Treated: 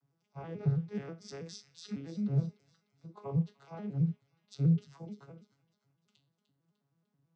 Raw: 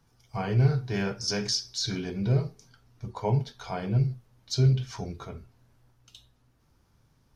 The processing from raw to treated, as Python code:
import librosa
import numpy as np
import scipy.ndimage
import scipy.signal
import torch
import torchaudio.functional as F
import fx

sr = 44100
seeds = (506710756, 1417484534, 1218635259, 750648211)

y = fx.vocoder_arp(x, sr, chord='minor triad', root=49, every_ms=108)
y = fx.low_shelf(y, sr, hz=170.0, db=-3.5)
y = fx.echo_wet_highpass(y, sr, ms=300, feedback_pct=45, hz=2500.0, wet_db=-11.0)
y = y * librosa.db_to_amplitude(-4.5)